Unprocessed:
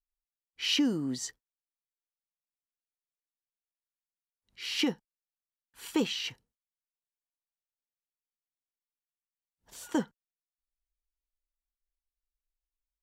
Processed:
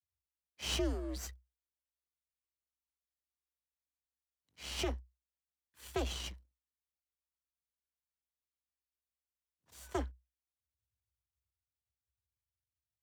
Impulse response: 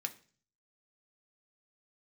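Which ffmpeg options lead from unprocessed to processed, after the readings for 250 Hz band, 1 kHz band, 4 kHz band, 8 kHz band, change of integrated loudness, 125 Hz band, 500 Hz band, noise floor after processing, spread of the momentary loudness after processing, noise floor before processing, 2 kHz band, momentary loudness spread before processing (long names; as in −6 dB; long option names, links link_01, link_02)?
−12.0 dB, −2.0 dB, −9.0 dB, −5.0 dB, −8.0 dB, +2.0 dB, −2.5 dB, below −85 dBFS, 14 LU, below −85 dBFS, −8.0 dB, 20 LU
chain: -af "aeval=exprs='max(val(0),0)':channel_layout=same,afreqshift=62,volume=-3.5dB"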